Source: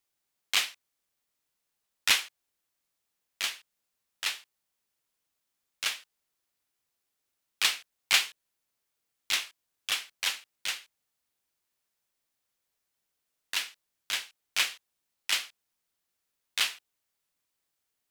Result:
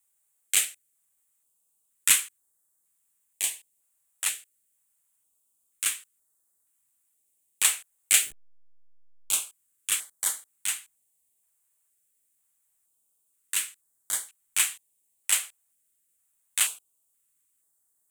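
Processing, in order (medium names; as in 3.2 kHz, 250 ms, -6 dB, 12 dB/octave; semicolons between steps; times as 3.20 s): 8.21–9.33 s: send-on-delta sampling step -41.5 dBFS; resonant high shelf 6.5 kHz +9 dB, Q 3; step-sequenced notch 2.1 Hz 270–2600 Hz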